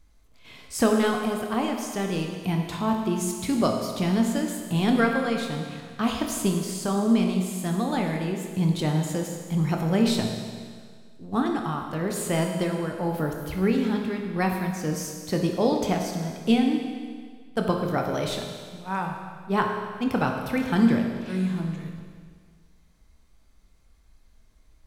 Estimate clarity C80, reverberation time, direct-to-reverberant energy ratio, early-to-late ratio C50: 5.5 dB, 1.8 s, 2.0 dB, 3.5 dB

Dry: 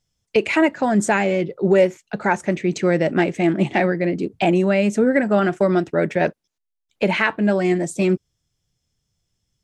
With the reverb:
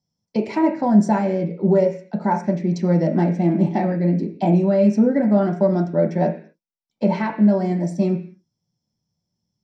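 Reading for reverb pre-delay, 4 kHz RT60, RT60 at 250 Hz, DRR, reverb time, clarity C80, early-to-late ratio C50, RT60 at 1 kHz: 3 ms, n/a, 0.55 s, 1.5 dB, 0.45 s, 15.5 dB, 11.0 dB, 0.45 s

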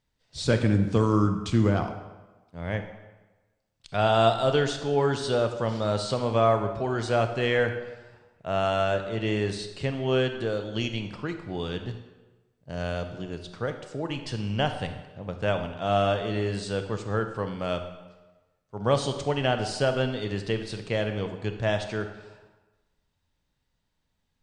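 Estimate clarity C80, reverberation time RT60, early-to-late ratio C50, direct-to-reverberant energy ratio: 10.5 dB, 1.2 s, 8.5 dB, 7.0 dB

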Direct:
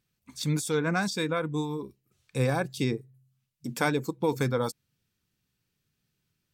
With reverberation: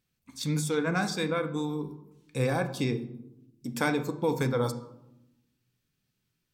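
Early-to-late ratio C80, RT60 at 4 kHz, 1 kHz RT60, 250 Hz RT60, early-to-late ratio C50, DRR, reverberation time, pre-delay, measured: 15.0 dB, 0.50 s, 0.80 s, 1.3 s, 12.5 dB, 7.0 dB, 0.90 s, 4 ms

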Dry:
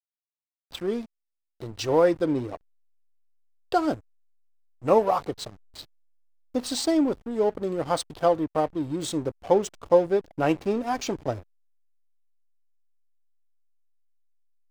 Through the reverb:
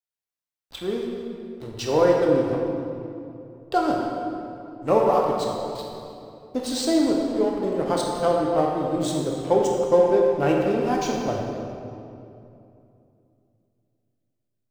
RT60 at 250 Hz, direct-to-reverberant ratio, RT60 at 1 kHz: 3.3 s, -1.5 dB, 2.5 s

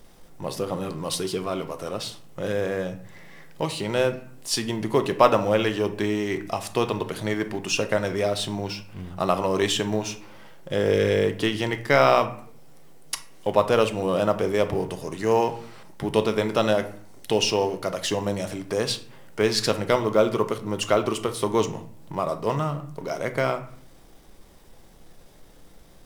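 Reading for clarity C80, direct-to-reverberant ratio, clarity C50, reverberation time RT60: 17.0 dB, 8.0 dB, 13.0 dB, 0.55 s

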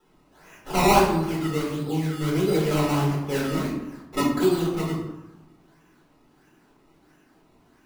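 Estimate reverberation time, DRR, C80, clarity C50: 1.0 s, -9.0 dB, 5.5 dB, 2.0 dB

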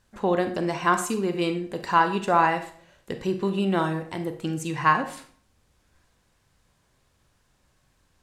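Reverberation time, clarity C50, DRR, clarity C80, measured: 0.50 s, 10.5 dB, 8.5 dB, 15.0 dB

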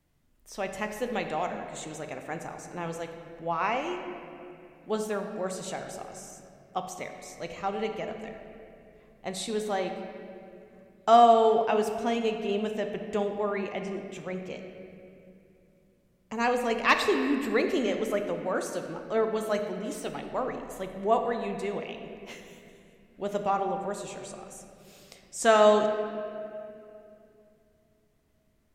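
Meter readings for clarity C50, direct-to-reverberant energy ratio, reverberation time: 6.0 dB, 5.0 dB, 2.7 s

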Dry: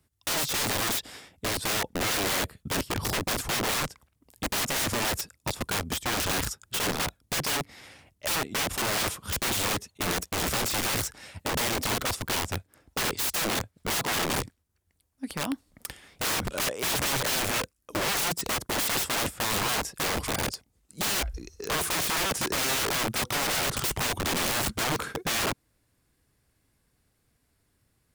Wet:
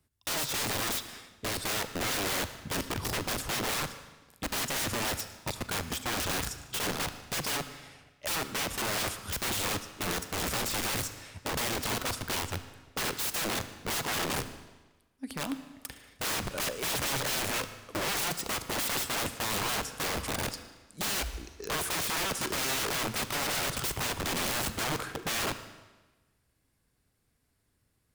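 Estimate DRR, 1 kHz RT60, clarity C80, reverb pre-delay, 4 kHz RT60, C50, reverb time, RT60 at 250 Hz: 11.0 dB, 1.2 s, 13.0 dB, 38 ms, 1.1 s, 12.0 dB, 1.2 s, 1.2 s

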